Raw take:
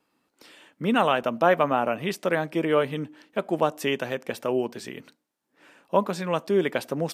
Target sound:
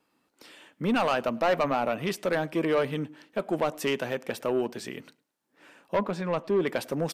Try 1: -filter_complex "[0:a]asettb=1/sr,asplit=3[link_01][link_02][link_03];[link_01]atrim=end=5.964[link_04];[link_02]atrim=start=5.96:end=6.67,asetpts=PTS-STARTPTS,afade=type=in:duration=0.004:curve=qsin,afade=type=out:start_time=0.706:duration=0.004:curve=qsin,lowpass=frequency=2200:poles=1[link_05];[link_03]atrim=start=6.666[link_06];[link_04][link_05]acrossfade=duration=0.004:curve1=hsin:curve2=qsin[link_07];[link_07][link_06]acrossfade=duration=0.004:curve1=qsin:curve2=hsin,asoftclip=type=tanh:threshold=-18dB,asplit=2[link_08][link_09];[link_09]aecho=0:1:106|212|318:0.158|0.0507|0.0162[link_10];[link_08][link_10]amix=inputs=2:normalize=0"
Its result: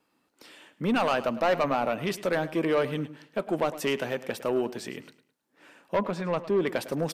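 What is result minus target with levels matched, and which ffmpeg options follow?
echo-to-direct +11.5 dB
-filter_complex "[0:a]asettb=1/sr,asplit=3[link_01][link_02][link_03];[link_01]atrim=end=5.964[link_04];[link_02]atrim=start=5.96:end=6.67,asetpts=PTS-STARTPTS,afade=type=in:duration=0.004:curve=qsin,afade=type=out:start_time=0.706:duration=0.004:curve=qsin,lowpass=frequency=2200:poles=1[link_05];[link_03]atrim=start=6.666[link_06];[link_04][link_05]acrossfade=duration=0.004:curve1=hsin:curve2=qsin[link_07];[link_07][link_06]acrossfade=duration=0.004:curve1=qsin:curve2=hsin,asoftclip=type=tanh:threshold=-18dB,asplit=2[link_08][link_09];[link_09]aecho=0:1:106|212:0.0422|0.0135[link_10];[link_08][link_10]amix=inputs=2:normalize=0"

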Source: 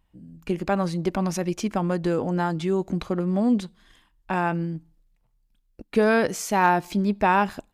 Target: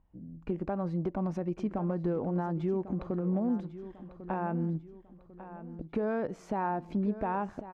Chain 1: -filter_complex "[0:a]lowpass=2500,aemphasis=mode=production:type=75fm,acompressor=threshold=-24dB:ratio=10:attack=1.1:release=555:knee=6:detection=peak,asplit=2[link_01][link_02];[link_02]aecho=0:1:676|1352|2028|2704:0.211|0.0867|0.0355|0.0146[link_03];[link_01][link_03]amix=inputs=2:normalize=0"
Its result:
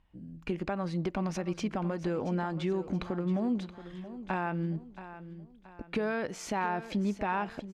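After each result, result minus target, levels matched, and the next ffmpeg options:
2,000 Hz band +8.0 dB; echo 421 ms early
-filter_complex "[0:a]lowpass=930,aemphasis=mode=production:type=75fm,acompressor=threshold=-24dB:ratio=10:attack=1.1:release=555:knee=6:detection=peak,asplit=2[link_01][link_02];[link_02]aecho=0:1:676|1352|2028|2704:0.211|0.0867|0.0355|0.0146[link_03];[link_01][link_03]amix=inputs=2:normalize=0"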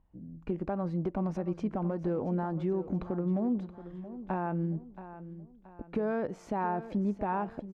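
echo 421 ms early
-filter_complex "[0:a]lowpass=930,aemphasis=mode=production:type=75fm,acompressor=threshold=-24dB:ratio=10:attack=1.1:release=555:knee=6:detection=peak,asplit=2[link_01][link_02];[link_02]aecho=0:1:1097|2194|3291|4388:0.211|0.0867|0.0355|0.0146[link_03];[link_01][link_03]amix=inputs=2:normalize=0"

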